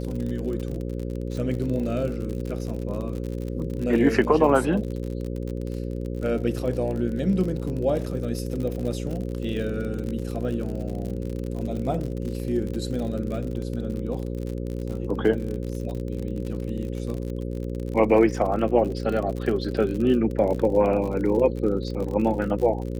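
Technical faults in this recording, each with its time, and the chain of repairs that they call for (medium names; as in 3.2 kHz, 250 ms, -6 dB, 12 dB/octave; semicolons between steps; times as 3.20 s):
buzz 60 Hz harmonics 9 -30 dBFS
crackle 51 per s -30 dBFS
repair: de-click; de-hum 60 Hz, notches 9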